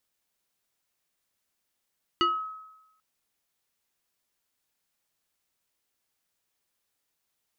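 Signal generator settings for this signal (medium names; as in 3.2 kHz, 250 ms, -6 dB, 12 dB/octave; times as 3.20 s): FM tone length 0.79 s, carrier 1.28 kHz, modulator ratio 1.27, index 1.3, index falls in 0.33 s exponential, decay 0.95 s, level -18.5 dB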